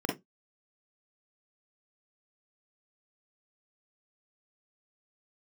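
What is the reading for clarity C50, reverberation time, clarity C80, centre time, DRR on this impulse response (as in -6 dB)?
6.5 dB, 0.15 s, 20.0 dB, 32 ms, -3.0 dB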